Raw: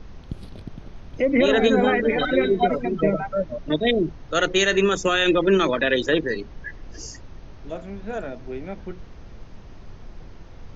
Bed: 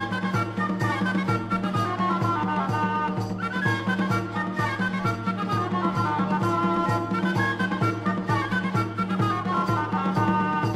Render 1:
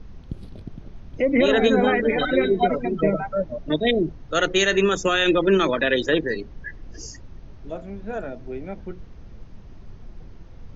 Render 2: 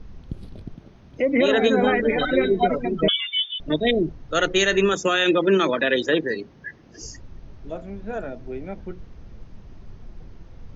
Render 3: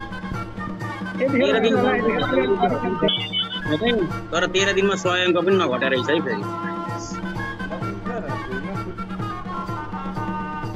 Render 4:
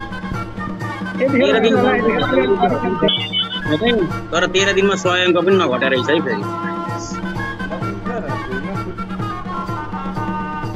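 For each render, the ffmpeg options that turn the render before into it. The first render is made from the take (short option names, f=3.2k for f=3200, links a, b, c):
-af "afftdn=nr=6:nf=-42"
-filter_complex "[0:a]asettb=1/sr,asplit=3[a][b][c];[a]atrim=end=0.744[d];[b]atrim=start=0.74:end=1.82,asetpts=PTS-STARTPTS,afade=t=in:d=0.004:c=qsin,afade=t=out:st=1.076:d=0.004:c=qsin,highpass=f=150:p=1[e];[c]atrim=start=1.816[f];[d][e]acrossfade=d=0.004:c1=hsin:c2=qsin[g];[g][f]acrossfade=d=0.004:c1=qsin:c2=hsin,asettb=1/sr,asplit=3[h][i][j];[h]atrim=end=3.084[k];[i]atrim=start=3.08:end=3.6,asetpts=PTS-STARTPTS,afade=t=in:d=0.004:c=qsin,afade=t=out:st=0.516:d=0.004:c=qsin,lowpass=f=3.1k:t=q:w=0.5098,lowpass=f=3.1k:t=q:w=0.6013,lowpass=f=3.1k:t=q:w=0.9,lowpass=f=3.1k:t=q:w=2.563,afreqshift=-3600[l];[j]atrim=start=3.596[m];[k][l]acrossfade=d=0.004:c1=hsin:c2=qsin[n];[n][m]acrossfade=d=0.004:c1=qsin:c2=hsin,asettb=1/sr,asplit=3[o][p][q];[o]atrim=end=4.934[r];[p]atrim=start=4.93:end=7.02,asetpts=PTS-STARTPTS,afade=t=in:d=0.004:c=qsin,afade=t=out:st=2.086:d=0.004:c=qsin,highpass=140[s];[q]atrim=start=7.016[t];[r][s]acrossfade=d=0.004:c1=hsin:c2=qsin[u];[u][t]acrossfade=d=0.004:c1=qsin:c2=hsin"
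-filter_complex "[1:a]volume=-4.5dB[a];[0:a][a]amix=inputs=2:normalize=0"
-af "volume=4.5dB,alimiter=limit=-3dB:level=0:latency=1"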